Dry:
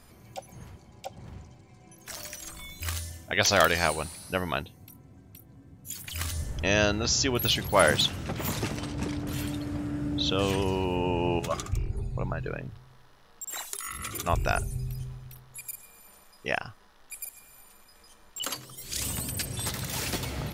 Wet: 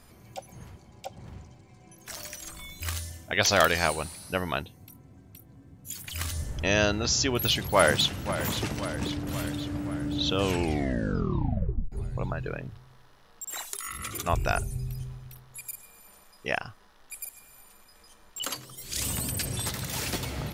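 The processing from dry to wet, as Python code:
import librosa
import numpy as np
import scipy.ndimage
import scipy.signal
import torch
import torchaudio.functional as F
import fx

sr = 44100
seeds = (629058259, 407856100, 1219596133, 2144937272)

y = fx.echo_throw(x, sr, start_s=7.46, length_s=0.9, ms=530, feedback_pct=65, wet_db=-12.0)
y = fx.env_flatten(y, sr, amount_pct=50, at=(18.97, 19.62))
y = fx.edit(y, sr, fx.tape_stop(start_s=10.43, length_s=1.49), tone=tone)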